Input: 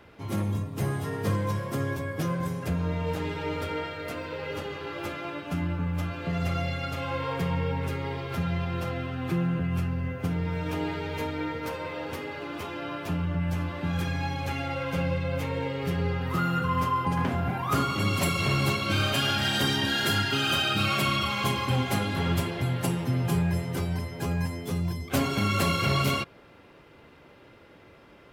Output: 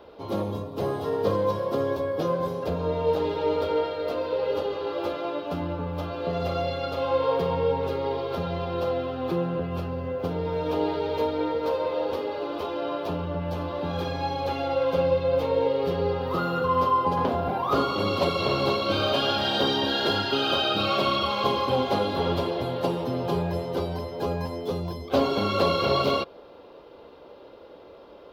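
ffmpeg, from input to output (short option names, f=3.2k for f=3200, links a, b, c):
-filter_complex "[0:a]acrossover=split=5800[a][b];[b]acompressor=threshold=-48dB:ratio=4:attack=1:release=60[c];[a][c]amix=inputs=2:normalize=0,equalizer=f=125:t=o:w=1:g=-9,equalizer=f=500:t=o:w=1:g=11,equalizer=f=1k:t=o:w=1:g=5,equalizer=f=2k:t=o:w=1:g=-10,equalizer=f=4k:t=o:w=1:g=9,equalizer=f=8k:t=o:w=1:g=-12"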